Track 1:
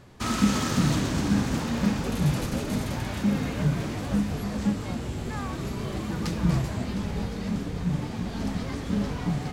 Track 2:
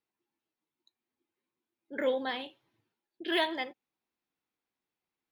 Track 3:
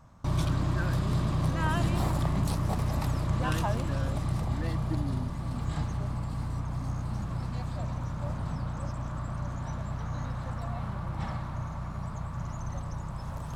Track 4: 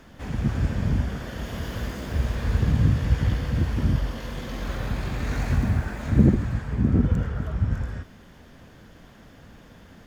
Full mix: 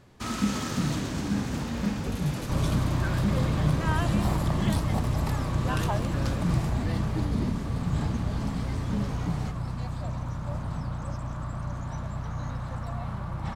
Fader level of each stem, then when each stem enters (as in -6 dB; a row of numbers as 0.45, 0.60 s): -4.5, -10.0, +1.0, -13.5 dB; 0.00, 1.30, 2.25, 1.15 s